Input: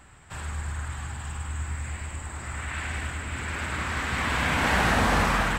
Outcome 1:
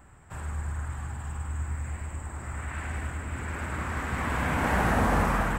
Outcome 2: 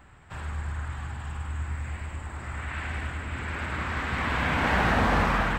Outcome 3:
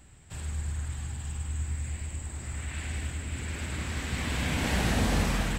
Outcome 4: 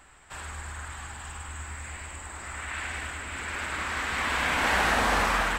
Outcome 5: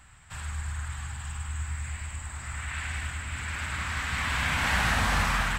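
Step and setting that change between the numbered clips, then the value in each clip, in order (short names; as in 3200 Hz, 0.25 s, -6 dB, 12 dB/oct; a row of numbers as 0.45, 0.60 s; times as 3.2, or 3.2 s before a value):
bell, frequency: 4000, 10000, 1200, 120, 390 Hz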